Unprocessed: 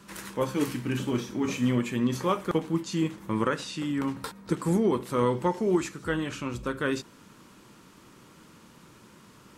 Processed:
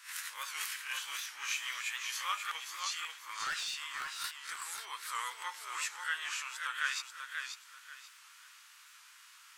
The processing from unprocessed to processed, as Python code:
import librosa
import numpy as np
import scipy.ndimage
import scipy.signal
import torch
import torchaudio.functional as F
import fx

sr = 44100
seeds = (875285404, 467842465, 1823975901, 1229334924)

p1 = fx.spec_swells(x, sr, rise_s=0.31)
p2 = scipy.signal.sosfilt(scipy.signal.butter(4, 1400.0, 'highpass', fs=sr, output='sos'), p1)
p3 = fx.overload_stage(p2, sr, gain_db=32.5, at=(3.18, 4.65))
p4 = p3 + fx.echo_feedback(p3, sr, ms=536, feedback_pct=26, wet_db=-6.0, dry=0)
y = fx.record_warp(p4, sr, rpm=78.0, depth_cents=100.0)